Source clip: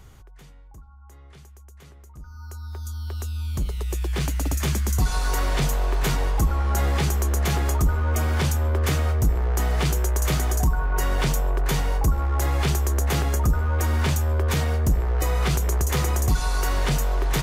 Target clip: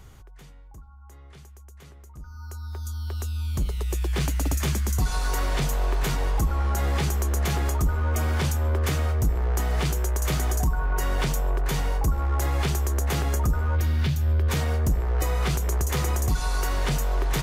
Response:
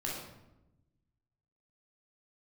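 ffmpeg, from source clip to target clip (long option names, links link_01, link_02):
-filter_complex "[0:a]asplit=3[link_01][link_02][link_03];[link_01]afade=type=out:start_time=13.75:duration=0.02[link_04];[link_02]equalizer=frequency=125:width_type=o:width=1:gain=11,equalizer=frequency=500:width_type=o:width=1:gain=-4,equalizer=frequency=1000:width_type=o:width=1:gain=-7,equalizer=frequency=4000:width_type=o:width=1:gain=5,equalizer=frequency=8000:width_type=o:width=1:gain=-8,afade=type=in:start_time=13.75:duration=0.02,afade=type=out:start_time=14.48:duration=0.02[link_05];[link_03]afade=type=in:start_time=14.48:duration=0.02[link_06];[link_04][link_05][link_06]amix=inputs=3:normalize=0,alimiter=limit=-16.5dB:level=0:latency=1:release=303"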